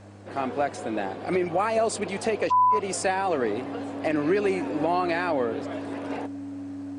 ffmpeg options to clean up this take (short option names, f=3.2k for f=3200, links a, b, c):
-af "bandreject=f=100.7:t=h:w=4,bandreject=f=201.4:t=h:w=4,bandreject=f=302.1:t=h:w=4,bandreject=f=280:w=30"